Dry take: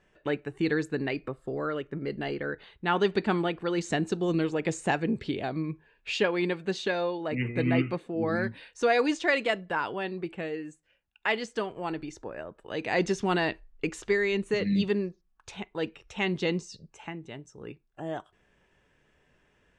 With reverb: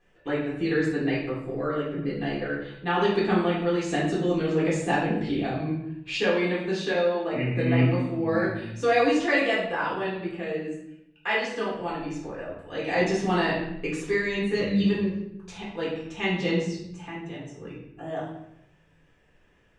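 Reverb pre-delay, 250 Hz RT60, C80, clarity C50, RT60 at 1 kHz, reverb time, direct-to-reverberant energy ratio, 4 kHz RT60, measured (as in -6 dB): 3 ms, 1.0 s, 6.0 dB, 2.5 dB, 0.75 s, 0.80 s, -7.0 dB, 0.60 s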